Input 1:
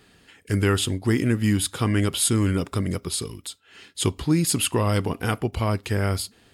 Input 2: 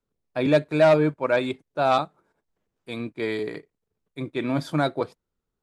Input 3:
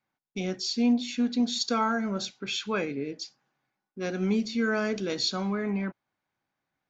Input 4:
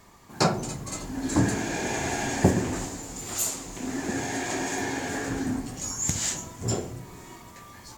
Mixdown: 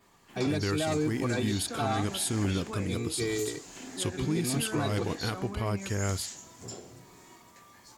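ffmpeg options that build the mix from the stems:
ffmpeg -i stem1.wav -i stem2.wav -i stem3.wav -i stem4.wav -filter_complex "[0:a]volume=-13.5dB[link_01];[1:a]bass=frequency=250:gain=12,treble=frequency=4000:gain=10,aecho=1:1:2.6:0.97,volume=-17dB[link_02];[2:a]volume=0dB,asplit=3[link_03][link_04][link_05];[link_03]atrim=end=0.71,asetpts=PTS-STARTPTS,afade=type=out:start_time=0.706:duration=0.004:curve=hsin[link_06];[link_04]atrim=start=0.71:end=1.32,asetpts=PTS-STARTPTS,volume=0[link_07];[link_05]atrim=start=1.32,asetpts=PTS-STARTPTS,afade=type=in:duration=0.004:curve=hsin[link_08];[link_06][link_07][link_08]concat=n=3:v=0:a=1[link_09];[3:a]adynamicequalizer=threshold=0.00631:dfrequency=4700:dqfactor=1.1:tfrequency=4700:tqfactor=1.1:attack=5:release=100:ratio=0.375:range=3:mode=boostabove:tftype=bell,volume=-8dB[link_10];[link_09][link_10]amix=inputs=2:normalize=0,lowshelf=frequency=120:gain=-11.5,acompressor=threshold=-41dB:ratio=2.5,volume=0dB[link_11];[link_01][link_02]amix=inputs=2:normalize=0,dynaudnorm=framelen=120:gausssize=5:maxgain=7dB,alimiter=limit=-20.5dB:level=0:latency=1:release=103,volume=0dB[link_12];[link_11][link_12]amix=inputs=2:normalize=0" out.wav

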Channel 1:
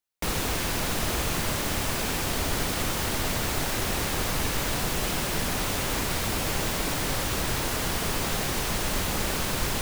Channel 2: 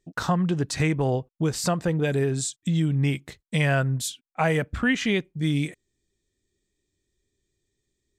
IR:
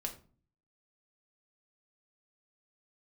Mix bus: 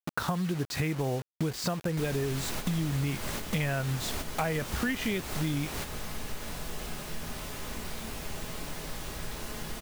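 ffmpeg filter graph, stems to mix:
-filter_complex "[0:a]adelay=1750,volume=-7dB,asplit=2[link_01][link_02];[link_02]volume=-4.5dB[link_03];[1:a]lowpass=4900,acrusher=bits=5:mix=0:aa=0.000001,volume=3dB,asplit=2[link_04][link_05];[link_05]apad=whole_len=509944[link_06];[link_01][link_06]sidechaingate=range=-33dB:threshold=-45dB:ratio=16:detection=peak[link_07];[2:a]atrim=start_sample=2205[link_08];[link_03][link_08]afir=irnorm=-1:irlink=0[link_09];[link_07][link_04][link_09]amix=inputs=3:normalize=0,acompressor=threshold=-29dB:ratio=4"

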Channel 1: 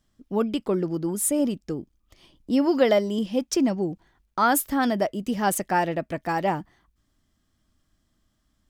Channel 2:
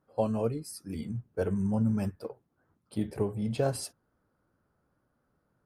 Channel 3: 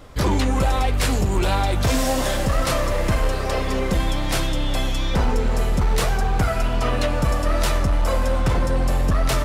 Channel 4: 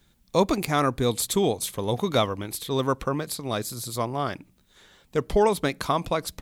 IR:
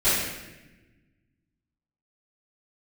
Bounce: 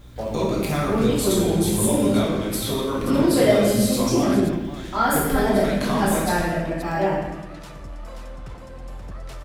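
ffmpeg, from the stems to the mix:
-filter_complex "[0:a]adelay=550,volume=-11.5dB,asplit=2[link_01][link_02];[link_02]volume=-3.5dB[link_03];[1:a]aeval=exprs='val(0)*gte(abs(val(0)),0.00891)':channel_layout=same,aeval=exprs='val(0)+0.00708*(sin(2*PI*60*n/s)+sin(2*PI*2*60*n/s)/2+sin(2*PI*3*60*n/s)/3+sin(2*PI*4*60*n/s)/4+sin(2*PI*5*60*n/s)/5)':channel_layout=same,volume=-5dB,asplit=2[link_04][link_05];[link_05]volume=-13dB[link_06];[2:a]highshelf=frequency=10000:gain=-5.5,alimiter=limit=-21dB:level=0:latency=1:release=144,volume=-11.5dB,asplit=2[link_07][link_08];[link_08]volume=-5dB[link_09];[3:a]acompressor=threshold=-33dB:ratio=5,volume=2.5dB,asplit=3[link_10][link_11][link_12];[link_11]volume=-9dB[link_13];[link_12]volume=-8dB[link_14];[4:a]atrim=start_sample=2205[link_15];[link_03][link_06][link_13]amix=inputs=3:normalize=0[link_16];[link_16][link_15]afir=irnorm=-1:irlink=0[link_17];[link_09][link_14]amix=inputs=2:normalize=0,aecho=0:1:530:1[link_18];[link_01][link_04][link_07][link_10][link_17][link_18]amix=inputs=6:normalize=0"

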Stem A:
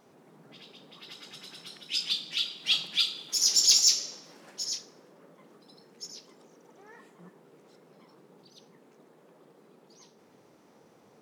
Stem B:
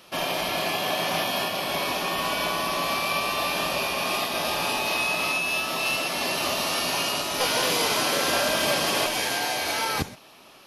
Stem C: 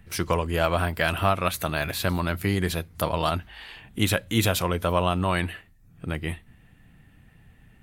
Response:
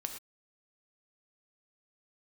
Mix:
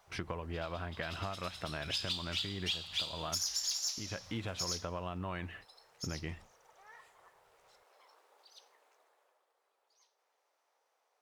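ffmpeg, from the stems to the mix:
-filter_complex "[0:a]aeval=exprs='if(lt(val(0),0),0.708*val(0),val(0))':channel_layout=same,highpass=frequency=630:width=0.5412,highpass=frequency=630:width=1.3066,volume=-0.5dB,afade=type=out:start_time=8.66:duration=0.79:silence=0.251189[link_01];[2:a]lowpass=3100,volume=-4.5dB,agate=range=-26dB:threshold=-48dB:ratio=16:detection=peak,acompressor=threshold=-36dB:ratio=6,volume=0dB[link_02];[link_01][link_02]amix=inputs=2:normalize=0,acompressor=threshold=-32dB:ratio=16"

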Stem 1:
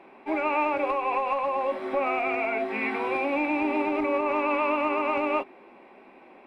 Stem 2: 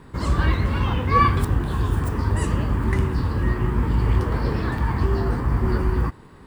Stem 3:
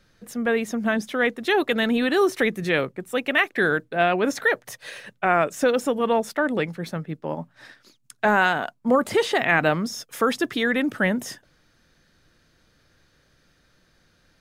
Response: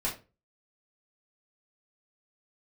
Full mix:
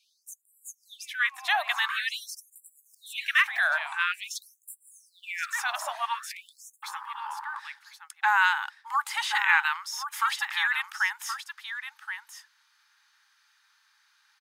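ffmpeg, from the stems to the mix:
-filter_complex "[0:a]adelay=350,volume=-13dB[link_01];[1:a]afwtdn=0.0501,adelay=1500,volume=-2.5dB[link_02];[2:a]volume=-1dB,asplit=3[link_03][link_04][link_05];[link_04]volume=-9.5dB[link_06];[link_05]apad=whole_len=300658[link_07];[link_01][link_07]sidechaincompress=threshold=-25dB:ratio=3:attack=9.8:release=719[link_08];[link_06]aecho=0:1:1074:1[link_09];[link_08][link_02][link_03][link_09]amix=inputs=4:normalize=0,afftfilt=real='re*gte(b*sr/1024,580*pow(7400/580,0.5+0.5*sin(2*PI*0.47*pts/sr)))':imag='im*gte(b*sr/1024,580*pow(7400/580,0.5+0.5*sin(2*PI*0.47*pts/sr)))':win_size=1024:overlap=0.75"

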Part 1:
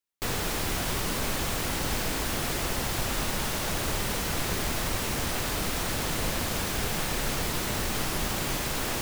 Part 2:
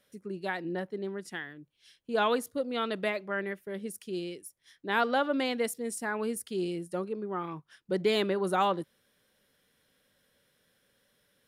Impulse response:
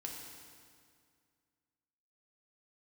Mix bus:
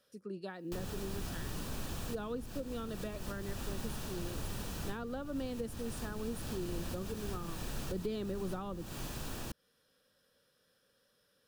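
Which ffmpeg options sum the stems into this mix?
-filter_complex "[0:a]acompressor=mode=upward:threshold=-41dB:ratio=2.5,adelay=500,volume=-7.5dB[link_01];[1:a]equalizer=frequency=500:width_type=o:width=0.33:gain=6,equalizer=frequency=1250:width_type=o:width=0.33:gain=6,equalizer=frequency=5000:width_type=o:width=0.33:gain=8,volume=-4.5dB,asplit=2[link_02][link_03];[link_03]apad=whole_len=419698[link_04];[link_01][link_04]sidechaincompress=threshold=-32dB:ratio=8:attack=23:release=569[link_05];[link_05][link_02]amix=inputs=2:normalize=0,bandreject=frequency=2100:width=5.7,acrossover=split=300[link_06][link_07];[link_07]acompressor=threshold=-43dB:ratio=10[link_08];[link_06][link_08]amix=inputs=2:normalize=0"

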